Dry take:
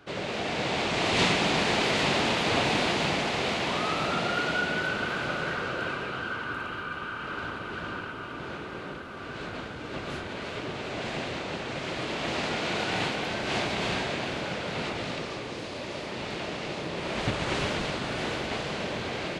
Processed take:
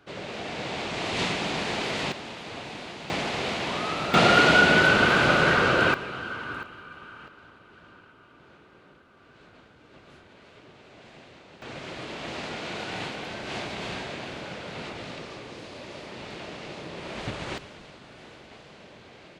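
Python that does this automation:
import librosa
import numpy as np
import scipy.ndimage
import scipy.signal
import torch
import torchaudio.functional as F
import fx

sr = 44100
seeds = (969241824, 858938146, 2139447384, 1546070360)

y = fx.gain(x, sr, db=fx.steps((0.0, -4.0), (2.12, -13.0), (3.1, -1.0), (4.14, 10.5), (5.94, -1.0), (6.63, -9.0), (7.28, -16.5), (11.62, -5.0), (17.58, -16.5)))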